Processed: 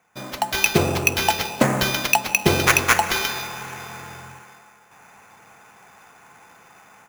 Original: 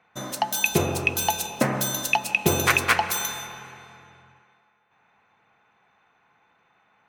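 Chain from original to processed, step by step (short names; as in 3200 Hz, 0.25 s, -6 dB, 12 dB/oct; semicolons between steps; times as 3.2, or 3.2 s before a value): sample-rate reducer 8500 Hz, jitter 0%; AGC gain up to 15.5 dB; gain -1 dB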